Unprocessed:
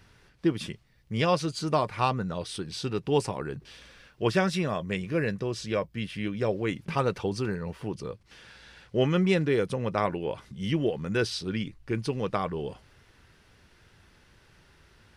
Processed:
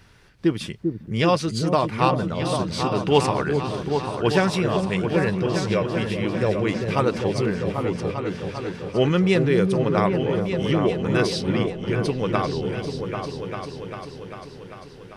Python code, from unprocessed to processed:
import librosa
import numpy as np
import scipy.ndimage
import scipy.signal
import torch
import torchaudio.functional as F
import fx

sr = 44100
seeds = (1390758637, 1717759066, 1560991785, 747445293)

y = fx.peak_eq(x, sr, hz=1800.0, db=8.0, octaves=2.8, at=(3.02, 3.67))
y = fx.echo_opening(y, sr, ms=396, hz=400, octaves=2, feedback_pct=70, wet_db=-3)
y = y * 10.0 ** (4.5 / 20.0)